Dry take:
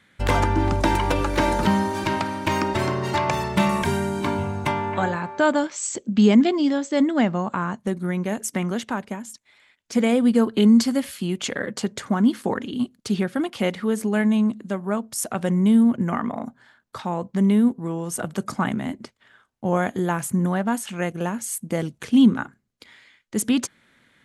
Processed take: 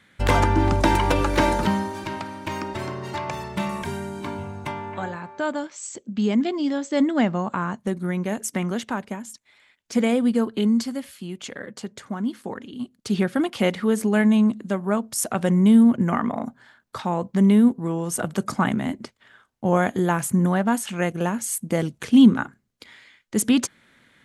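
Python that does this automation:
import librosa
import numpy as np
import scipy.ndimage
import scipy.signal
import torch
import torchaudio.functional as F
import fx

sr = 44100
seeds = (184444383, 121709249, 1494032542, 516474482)

y = fx.gain(x, sr, db=fx.line((1.43, 1.5), (2.03, -7.0), (6.23, -7.0), (7.0, -0.5), (10.0, -0.5), (11.07, -8.0), (12.77, -8.0), (13.22, 2.0)))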